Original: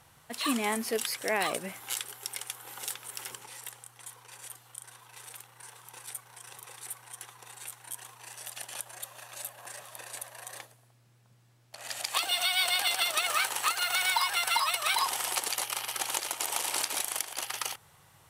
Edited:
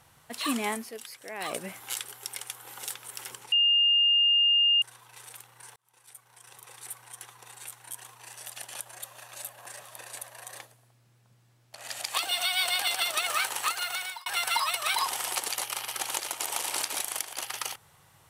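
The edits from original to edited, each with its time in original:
0.68–1.57 s: dip -11 dB, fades 0.22 s
3.52–4.82 s: bleep 2.82 kHz -19 dBFS
5.76–6.88 s: fade in
13.51–14.26 s: fade out equal-power

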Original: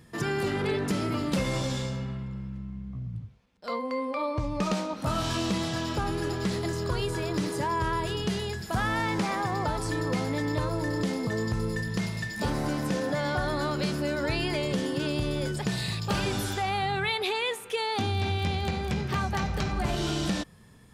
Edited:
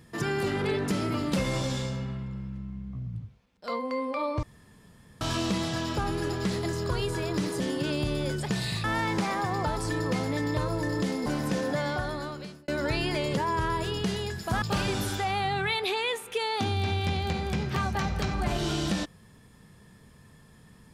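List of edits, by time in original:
4.43–5.21 s: room tone
7.60–8.85 s: swap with 14.76–16.00 s
11.27–12.65 s: delete
13.16–14.07 s: fade out linear

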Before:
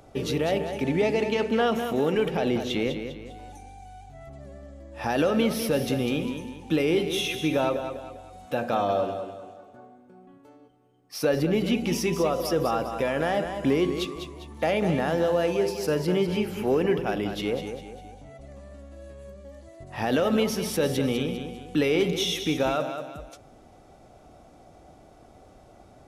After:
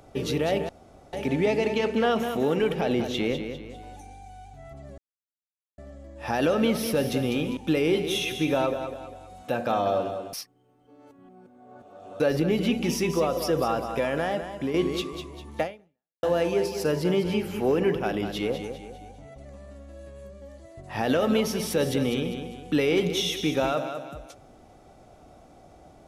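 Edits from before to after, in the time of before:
0.69 s: insert room tone 0.44 s
4.54 s: insert silence 0.80 s
6.33–6.60 s: delete
9.36–11.23 s: reverse
13.06–13.77 s: fade out, to -7.5 dB
14.64–15.26 s: fade out exponential

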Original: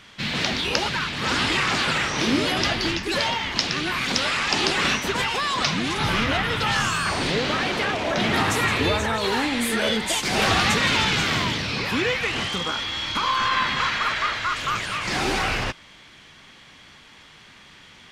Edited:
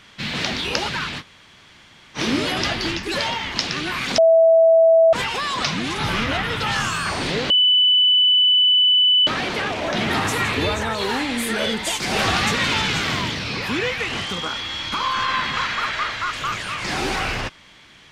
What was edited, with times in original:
1.20–2.17 s: room tone, crossfade 0.06 s
4.18–5.13 s: bleep 655 Hz -9.5 dBFS
7.50 s: add tone 2.99 kHz -12 dBFS 1.77 s

